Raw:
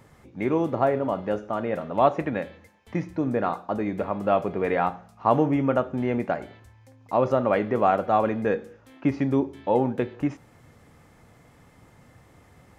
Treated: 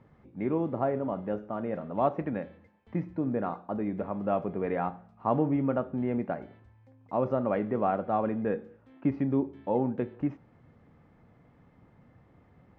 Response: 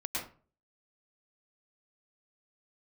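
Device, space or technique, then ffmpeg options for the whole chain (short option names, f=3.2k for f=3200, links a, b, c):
phone in a pocket: -af "lowpass=3.7k,equalizer=f=200:t=o:w=1.2:g=4.5,highshelf=f=2.4k:g=-10,volume=-6.5dB"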